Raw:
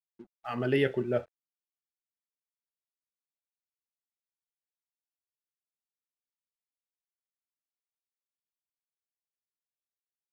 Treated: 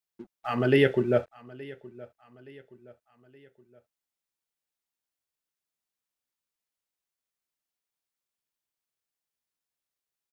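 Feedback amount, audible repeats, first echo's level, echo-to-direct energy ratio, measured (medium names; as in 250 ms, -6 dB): 45%, 3, -21.0 dB, -20.0 dB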